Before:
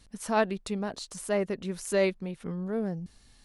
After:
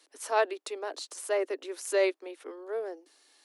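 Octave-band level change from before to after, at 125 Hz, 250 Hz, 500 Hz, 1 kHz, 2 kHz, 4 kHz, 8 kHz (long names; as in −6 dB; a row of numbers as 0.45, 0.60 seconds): below −40 dB, −10.5 dB, 0.0 dB, 0.0 dB, 0.0 dB, 0.0 dB, 0.0 dB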